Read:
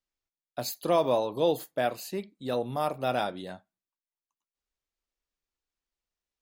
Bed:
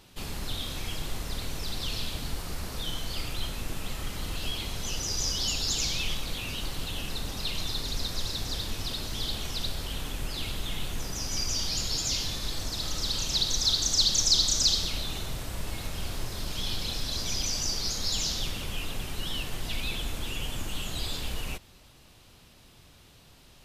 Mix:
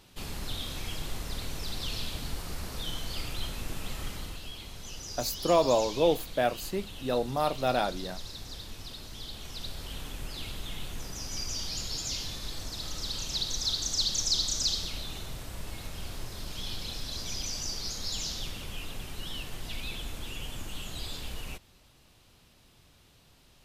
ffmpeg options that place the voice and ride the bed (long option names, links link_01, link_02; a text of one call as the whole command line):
ffmpeg -i stem1.wav -i stem2.wav -filter_complex "[0:a]adelay=4600,volume=1dB[link_01];[1:a]volume=2.5dB,afade=type=out:start_time=4.07:duration=0.36:silence=0.421697,afade=type=in:start_time=9.32:duration=0.61:silence=0.595662[link_02];[link_01][link_02]amix=inputs=2:normalize=0" out.wav